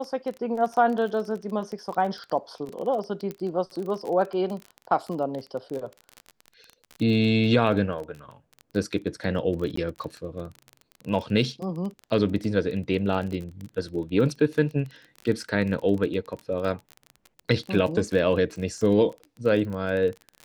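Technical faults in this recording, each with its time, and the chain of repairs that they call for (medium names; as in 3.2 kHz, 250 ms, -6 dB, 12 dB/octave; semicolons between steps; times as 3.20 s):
crackle 25 per s -31 dBFS
3.31 s: pop -20 dBFS
9.76–9.77 s: dropout 14 ms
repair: de-click; interpolate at 9.76 s, 14 ms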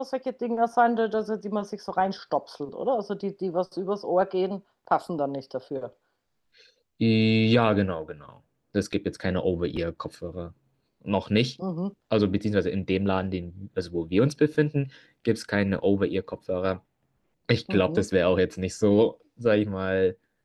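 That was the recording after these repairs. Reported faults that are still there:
nothing left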